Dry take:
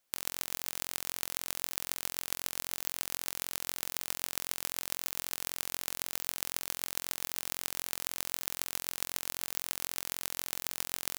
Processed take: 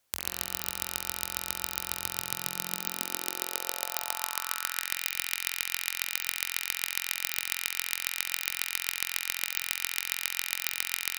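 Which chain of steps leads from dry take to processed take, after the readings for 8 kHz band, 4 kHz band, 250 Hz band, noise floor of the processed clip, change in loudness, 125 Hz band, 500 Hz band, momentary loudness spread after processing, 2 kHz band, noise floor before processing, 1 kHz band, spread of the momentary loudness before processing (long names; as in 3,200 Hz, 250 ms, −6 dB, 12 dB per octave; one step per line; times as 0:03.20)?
+3.0 dB, +5.5 dB, +1.5 dB, −45 dBFS, +4.0 dB, +2.5 dB, +1.5 dB, 2 LU, +9.0 dB, −78 dBFS, +5.0 dB, 0 LU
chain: spring reverb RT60 3.2 s, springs 51 ms, chirp 25 ms, DRR 5 dB
high-pass filter sweep 70 Hz → 2,100 Hz, 0:01.86–0:05.03
harmonic generator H 4 −24 dB, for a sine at −3.5 dBFS
level +4 dB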